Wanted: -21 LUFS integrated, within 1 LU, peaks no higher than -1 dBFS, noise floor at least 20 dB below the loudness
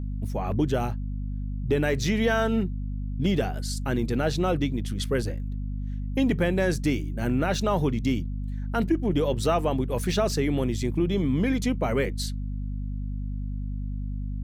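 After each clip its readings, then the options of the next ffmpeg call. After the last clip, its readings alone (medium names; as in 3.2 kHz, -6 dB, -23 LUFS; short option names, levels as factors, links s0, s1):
hum 50 Hz; highest harmonic 250 Hz; hum level -28 dBFS; loudness -27.0 LUFS; peak level -11.5 dBFS; loudness target -21.0 LUFS
-> -af "bandreject=f=50:t=h:w=6,bandreject=f=100:t=h:w=6,bandreject=f=150:t=h:w=6,bandreject=f=200:t=h:w=6,bandreject=f=250:t=h:w=6"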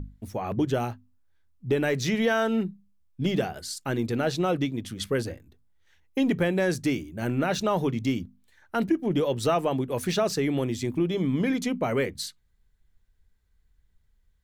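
hum not found; loudness -27.5 LUFS; peak level -13.0 dBFS; loudness target -21.0 LUFS
-> -af "volume=2.11"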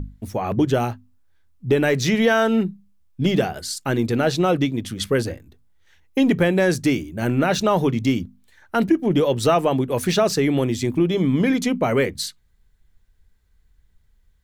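loudness -21.0 LUFS; peak level -6.5 dBFS; noise floor -61 dBFS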